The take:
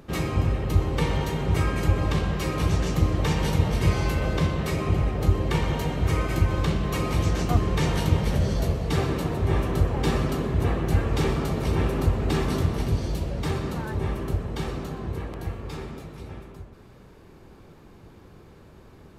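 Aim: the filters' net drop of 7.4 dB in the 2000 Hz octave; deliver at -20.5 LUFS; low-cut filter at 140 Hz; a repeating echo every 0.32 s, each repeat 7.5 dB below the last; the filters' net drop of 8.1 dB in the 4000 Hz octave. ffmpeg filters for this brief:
-af "highpass=140,equalizer=f=2k:t=o:g=-7.5,equalizer=f=4k:t=o:g=-8,aecho=1:1:320|640|960|1280|1600:0.422|0.177|0.0744|0.0312|0.0131,volume=8dB"

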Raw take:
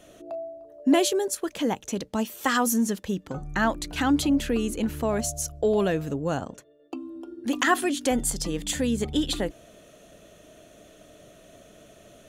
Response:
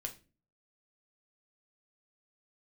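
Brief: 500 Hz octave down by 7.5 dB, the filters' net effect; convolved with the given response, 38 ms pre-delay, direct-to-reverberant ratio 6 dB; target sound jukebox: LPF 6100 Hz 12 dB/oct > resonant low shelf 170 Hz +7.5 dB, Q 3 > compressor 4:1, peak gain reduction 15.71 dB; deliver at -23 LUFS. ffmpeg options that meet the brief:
-filter_complex "[0:a]equalizer=f=500:t=o:g=-8.5,asplit=2[a][b];[1:a]atrim=start_sample=2205,adelay=38[c];[b][c]afir=irnorm=-1:irlink=0,volume=-4.5dB[d];[a][d]amix=inputs=2:normalize=0,lowpass=6.1k,lowshelf=f=170:t=q:w=3:g=7.5,acompressor=threshold=-37dB:ratio=4,volume=17dB"

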